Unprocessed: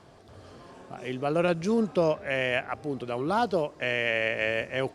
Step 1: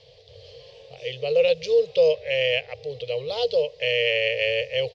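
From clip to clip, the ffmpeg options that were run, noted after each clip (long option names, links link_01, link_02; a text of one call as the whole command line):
ffmpeg -i in.wav -af "firequalizer=gain_entry='entry(130,0);entry(220,-29);entry(330,-29);entry(470,13);entry(690,-7);entry(1400,-22);entry(1900,-1);entry(3000,11);entry(4400,12);entry(8600,-16)':delay=0.05:min_phase=1" out.wav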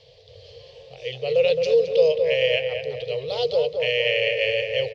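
ffmpeg -i in.wav -filter_complex "[0:a]asplit=2[link_01][link_02];[link_02]adelay=217,lowpass=frequency=1800:poles=1,volume=-4.5dB,asplit=2[link_03][link_04];[link_04]adelay=217,lowpass=frequency=1800:poles=1,volume=0.53,asplit=2[link_05][link_06];[link_06]adelay=217,lowpass=frequency=1800:poles=1,volume=0.53,asplit=2[link_07][link_08];[link_08]adelay=217,lowpass=frequency=1800:poles=1,volume=0.53,asplit=2[link_09][link_10];[link_10]adelay=217,lowpass=frequency=1800:poles=1,volume=0.53,asplit=2[link_11][link_12];[link_12]adelay=217,lowpass=frequency=1800:poles=1,volume=0.53,asplit=2[link_13][link_14];[link_14]adelay=217,lowpass=frequency=1800:poles=1,volume=0.53[link_15];[link_01][link_03][link_05][link_07][link_09][link_11][link_13][link_15]amix=inputs=8:normalize=0" out.wav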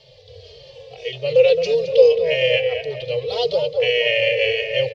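ffmpeg -i in.wav -filter_complex "[0:a]asplit=2[link_01][link_02];[link_02]adelay=2.8,afreqshift=-1.7[link_03];[link_01][link_03]amix=inputs=2:normalize=1,volume=6.5dB" out.wav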